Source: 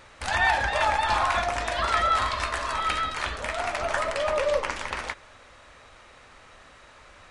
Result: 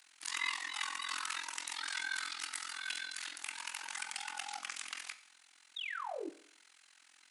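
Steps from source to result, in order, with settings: pre-emphasis filter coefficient 0.97; frequency shift +240 Hz; painted sound fall, 5.76–6.30 s, 290–3900 Hz -39 dBFS; AM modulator 43 Hz, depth 100%; Schroeder reverb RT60 0.57 s, combs from 30 ms, DRR 13 dB; trim +2 dB

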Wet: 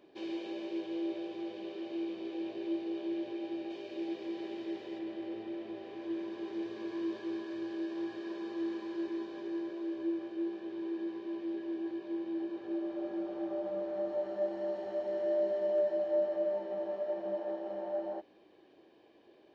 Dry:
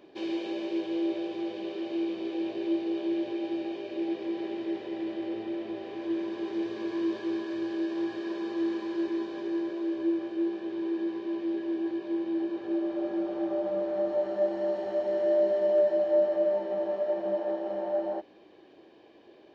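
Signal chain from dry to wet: 3.70–4.99 s: treble shelf 4.5 kHz +9 dB; trim -6.5 dB

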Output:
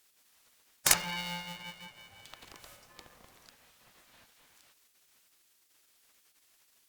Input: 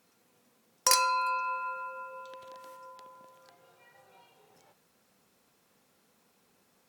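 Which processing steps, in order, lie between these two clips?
spectral gate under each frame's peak -15 dB weak; 0.93–2.25 s: low-pass that closes with the level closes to 2.6 kHz, closed at -35.5 dBFS; polarity switched at an audio rate 350 Hz; trim +6.5 dB

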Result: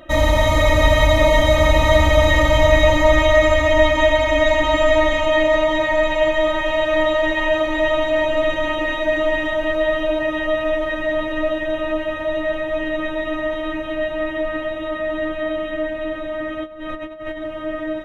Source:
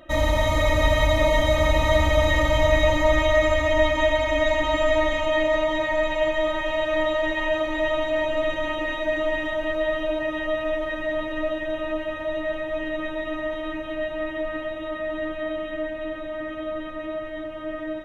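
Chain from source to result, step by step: 16.64–17.42 s: compressor with a negative ratio -35 dBFS, ratio -0.5; trim +5.5 dB

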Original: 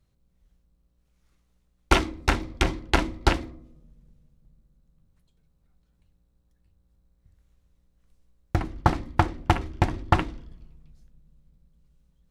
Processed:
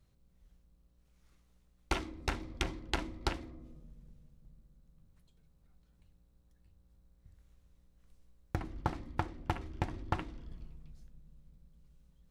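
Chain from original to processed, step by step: compression 2.5:1, threshold -37 dBFS, peak gain reduction 16.5 dB

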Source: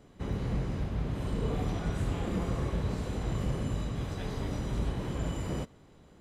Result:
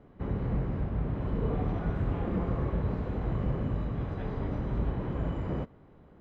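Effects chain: low-pass 1.7 kHz 12 dB/octave; trim +1.5 dB

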